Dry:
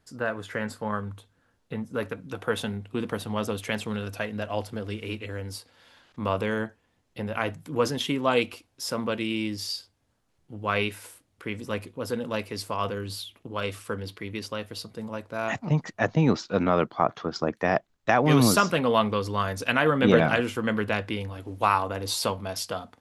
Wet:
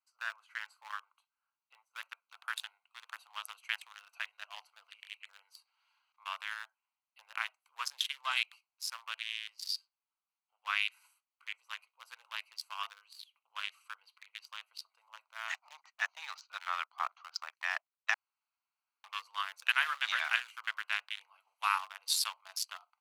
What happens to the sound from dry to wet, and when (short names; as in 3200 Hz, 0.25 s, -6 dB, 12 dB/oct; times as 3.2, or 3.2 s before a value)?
18.14–19.04 room tone
whole clip: Wiener smoothing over 25 samples; Bessel high-pass 1800 Hz, order 8; high shelf 8800 Hz +6 dB